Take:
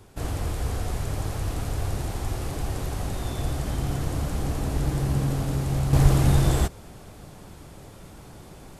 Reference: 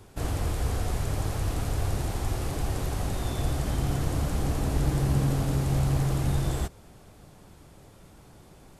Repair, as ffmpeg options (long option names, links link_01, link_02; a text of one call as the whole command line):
ffmpeg -i in.wav -filter_complex "[0:a]asplit=3[link_01][link_02][link_03];[link_01]afade=type=out:start_time=6.02:duration=0.02[link_04];[link_02]highpass=frequency=140:width=0.5412,highpass=frequency=140:width=1.3066,afade=type=in:start_time=6.02:duration=0.02,afade=type=out:start_time=6.14:duration=0.02[link_05];[link_03]afade=type=in:start_time=6.14:duration=0.02[link_06];[link_04][link_05][link_06]amix=inputs=3:normalize=0,asetnsamples=nb_out_samples=441:pad=0,asendcmd='5.93 volume volume -7dB',volume=0dB" out.wav